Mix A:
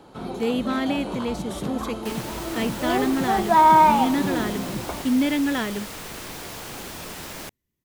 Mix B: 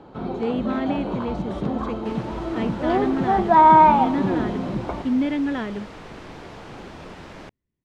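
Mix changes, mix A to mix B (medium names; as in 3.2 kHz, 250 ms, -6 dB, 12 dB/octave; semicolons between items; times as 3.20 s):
first sound +4.5 dB; master: add tape spacing loss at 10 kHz 26 dB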